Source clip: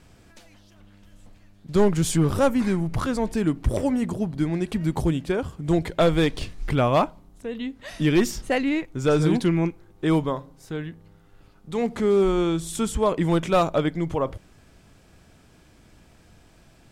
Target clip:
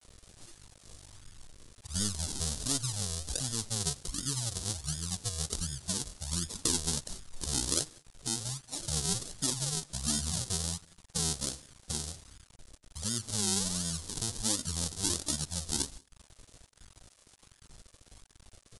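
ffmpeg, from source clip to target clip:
-filter_complex "[0:a]afftdn=nr=21:nf=-43,adynamicequalizer=threshold=0.0224:dfrequency=580:dqfactor=1.3:tfrequency=580:tqfactor=1.3:attack=5:release=100:ratio=0.375:range=2.5:mode=cutabove:tftype=bell,acompressor=threshold=0.00708:ratio=2.5,acrusher=samples=26:mix=1:aa=0.000001:lfo=1:lforange=26:lforate=1.5,aexciter=amount=9.6:drive=5.2:freq=6800,atempo=1.8,acrusher=bits=8:mix=0:aa=0.000001,asplit=2[s0][s1];[s1]adelay=93.29,volume=0.0447,highshelf=f=4000:g=-2.1[s2];[s0][s2]amix=inputs=2:normalize=0,asetrate=22050,aresample=44100"

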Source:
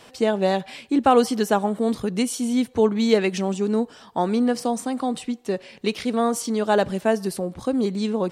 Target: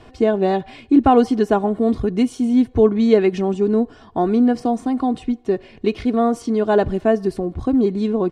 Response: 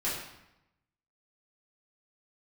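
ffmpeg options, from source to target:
-af "aemphasis=mode=reproduction:type=riaa,aecho=1:1:2.8:0.51"

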